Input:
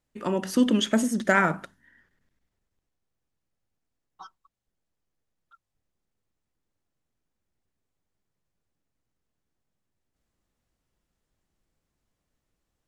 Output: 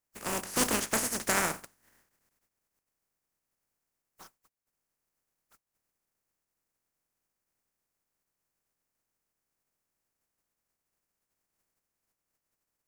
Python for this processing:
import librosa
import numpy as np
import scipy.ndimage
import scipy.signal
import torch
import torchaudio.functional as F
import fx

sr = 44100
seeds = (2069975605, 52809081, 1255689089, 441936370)

y = fx.spec_flatten(x, sr, power=0.27)
y = fx.peak_eq(y, sr, hz=3500.0, db=-9.0, octaves=0.81)
y = F.gain(torch.from_numpy(y), -5.5).numpy()